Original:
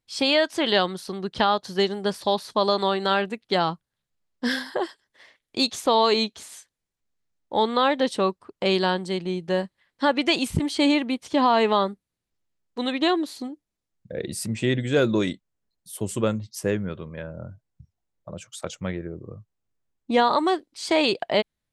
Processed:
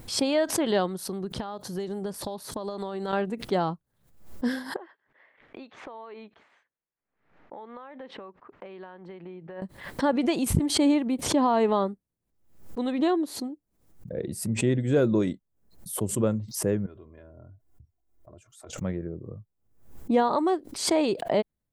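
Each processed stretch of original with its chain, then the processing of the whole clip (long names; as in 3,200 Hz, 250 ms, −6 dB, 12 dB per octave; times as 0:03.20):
0:00.91–0:03.13: high-shelf EQ 6,800 Hz +7.5 dB + downward compressor 10 to 1, threshold −26 dBFS
0:04.76–0:09.62: low-pass filter 2,200 Hz 24 dB per octave + spectral tilt +4.5 dB per octave + downward compressor, threshold −36 dBFS
0:16.86–0:18.73: comb filter 2.9 ms, depth 80% + downward compressor 2 to 1, threshold −52 dBFS
whole clip: parametric band 3,600 Hz −13.5 dB 3 octaves; background raised ahead of every attack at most 99 dB per second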